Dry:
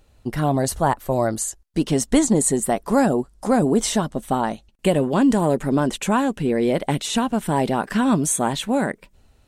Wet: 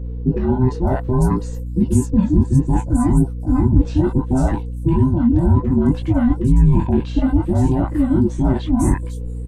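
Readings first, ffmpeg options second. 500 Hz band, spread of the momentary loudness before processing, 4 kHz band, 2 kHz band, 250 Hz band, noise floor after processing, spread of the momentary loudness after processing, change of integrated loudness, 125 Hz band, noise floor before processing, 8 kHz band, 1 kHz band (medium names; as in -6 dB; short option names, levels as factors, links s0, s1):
-3.0 dB, 7 LU, under -10 dB, -8.0 dB, +4.0 dB, -26 dBFS, 5 LU, +3.5 dB, +10.5 dB, -58 dBFS, -12.5 dB, -5.0 dB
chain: -filter_complex "[0:a]afftfilt=real='real(if(between(b,1,1008),(2*floor((b-1)/24)+1)*24-b,b),0)':imag='imag(if(between(b,1,1008),(2*floor((b-1)/24)+1)*24-b,b),0)*if(between(b,1,1008),-1,1)':win_size=2048:overlap=0.75,flanger=delay=17.5:depth=5.5:speed=0.63,tiltshelf=f=970:g=9,areverse,acompressor=threshold=0.0631:ratio=8,areverse,aeval=exprs='val(0)+0.00891*(sin(2*PI*60*n/s)+sin(2*PI*2*60*n/s)/2+sin(2*PI*3*60*n/s)/3+sin(2*PI*4*60*n/s)/4+sin(2*PI*5*60*n/s)/5)':c=same,lowshelf=f=200:g=11.5,acrossover=split=740|5400[s0][s1][s2];[s1]adelay=40[s3];[s2]adelay=540[s4];[s0][s3][s4]amix=inputs=3:normalize=0,volume=2.11"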